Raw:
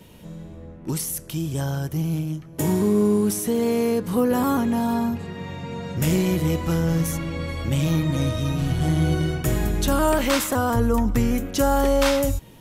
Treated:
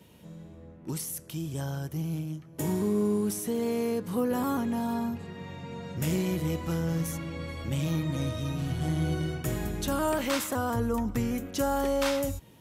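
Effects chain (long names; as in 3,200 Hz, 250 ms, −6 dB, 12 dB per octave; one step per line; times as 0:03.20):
high-pass filter 65 Hz
level −7.5 dB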